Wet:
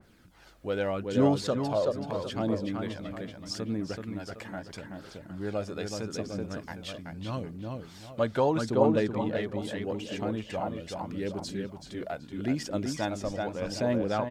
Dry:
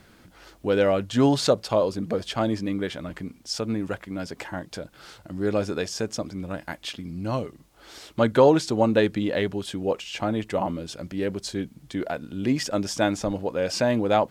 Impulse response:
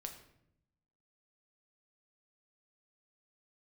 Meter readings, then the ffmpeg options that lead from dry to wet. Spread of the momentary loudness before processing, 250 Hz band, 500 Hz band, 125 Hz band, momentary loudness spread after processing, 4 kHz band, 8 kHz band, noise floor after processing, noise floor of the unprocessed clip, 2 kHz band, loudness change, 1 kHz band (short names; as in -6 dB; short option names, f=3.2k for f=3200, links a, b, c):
13 LU, -5.0 dB, -6.5 dB, -4.0 dB, 14 LU, -8.0 dB, -8.5 dB, -50 dBFS, -55 dBFS, -7.0 dB, -6.0 dB, -6.0 dB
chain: -filter_complex "[0:a]asplit=2[a][b];[b]adelay=379,lowpass=f=3.8k:p=1,volume=-4dB,asplit=2[c][d];[d]adelay=379,lowpass=f=3.8k:p=1,volume=0.39,asplit=2[e][f];[f]adelay=379,lowpass=f=3.8k:p=1,volume=0.39,asplit=2[g][h];[h]adelay=379,lowpass=f=3.8k:p=1,volume=0.39,asplit=2[i][j];[j]adelay=379,lowpass=f=3.8k:p=1,volume=0.39[k];[c][e][g][i][k]amix=inputs=5:normalize=0[l];[a][l]amix=inputs=2:normalize=0,aphaser=in_gain=1:out_gain=1:delay=1.8:decay=0.35:speed=0.79:type=triangular,adynamicequalizer=threshold=0.0224:dfrequency=1900:dqfactor=0.7:tfrequency=1900:tqfactor=0.7:attack=5:release=100:ratio=0.375:range=2.5:mode=cutabove:tftype=highshelf,volume=-8dB"